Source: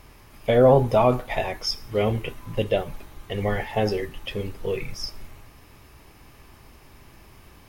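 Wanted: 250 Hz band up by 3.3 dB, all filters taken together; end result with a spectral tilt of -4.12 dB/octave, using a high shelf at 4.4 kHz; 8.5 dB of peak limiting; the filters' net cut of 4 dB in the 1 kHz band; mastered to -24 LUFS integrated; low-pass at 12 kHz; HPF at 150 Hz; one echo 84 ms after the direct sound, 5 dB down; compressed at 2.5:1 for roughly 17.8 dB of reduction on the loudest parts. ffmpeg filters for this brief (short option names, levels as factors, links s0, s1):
-af "highpass=150,lowpass=12000,equalizer=f=250:t=o:g=5,equalizer=f=1000:t=o:g=-6,highshelf=f=4400:g=-3,acompressor=threshold=0.0112:ratio=2.5,alimiter=level_in=2:limit=0.0631:level=0:latency=1,volume=0.501,aecho=1:1:84:0.562,volume=6.68"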